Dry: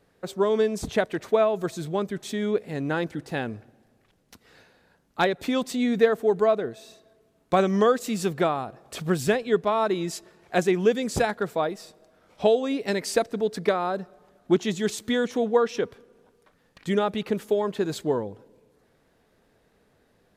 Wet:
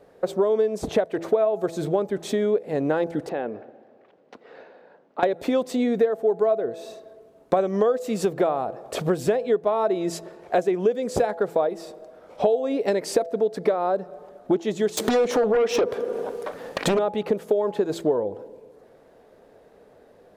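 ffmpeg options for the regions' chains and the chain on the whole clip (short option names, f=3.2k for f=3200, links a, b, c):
-filter_complex "[0:a]asettb=1/sr,asplit=3[a][b][c];[a]atrim=end=3.294[d];[b]atrim=start=3.29:end=5.23,asetpts=PTS-STARTPTS,afade=t=in:d=0.004:c=qsin,afade=t=out:st=1.936:d=0.004:c=qsin,acompressor=threshold=-34dB:ratio=6:attack=3.2:release=140:knee=1:detection=peak,highpass=220,lowpass=3k[e];[c]atrim=start=5.226[f];[d][e]acrossfade=d=0.004:c1=hsin:c2=qsin[g];[g][f]acrossfade=d=0.004:c1=qsin:c2=hsin,asettb=1/sr,asplit=3[h][i][j];[h]atrim=end=14.974[k];[i]atrim=start=14.97:end=16.99,asetpts=PTS-STARTPTS,afade=t=in:d=0.004:c=qsin,afade=t=out:st=2.016:d=0.004:c=qsin,lowshelf=f=130:g=-11,acompressor=threshold=-31dB:ratio=4:attack=3.2:release=140:knee=1:detection=peak,aeval=exprs='0.141*sin(PI/2*5.01*val(0)/0.141)':c=same[l];[j]atrim=start=16.986[m];[k][l]acrossfade=d=0.004:c1=hsin:c2=qsin[n];[n][m]acrossfade=d=0.004:c1=qsin:c2=hsin,equalizer=f=550:w=0.74:g=14.5,bandreject=f=167.2:t=h:w=4,bandreject=f=334.4:t=h:w=4,bandreject=f=501.6:t=h:w=4,bandreject=f=668.8:t=h:w=4,bandreject=f=836:t=h:w=4,acompressor=threshold=-22dB:ratio=4,volume=1.5dB"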